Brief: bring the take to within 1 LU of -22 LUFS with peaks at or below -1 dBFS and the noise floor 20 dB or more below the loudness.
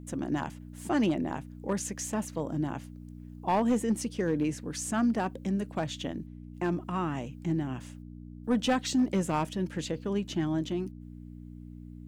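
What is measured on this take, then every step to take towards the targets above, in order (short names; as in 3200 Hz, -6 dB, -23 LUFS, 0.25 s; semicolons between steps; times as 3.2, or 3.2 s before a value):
clipped 0.5%; flat tops at -20.0 dBFS; hum 60 Hz; harmonics up to 300 Hz; hum level -44 dBFS; loudness -31.5 LUFS; peak -20.0 dBFS; loudness target -22.0 LUFS
-> clip repair -20 dBFS; de-hum 60 Hz, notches 5; gain +9.5 dB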